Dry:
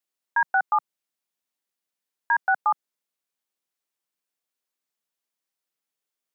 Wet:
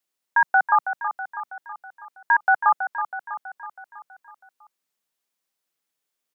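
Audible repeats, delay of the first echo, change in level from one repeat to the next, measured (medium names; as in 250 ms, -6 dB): 5, 324 ms, -5.0 dB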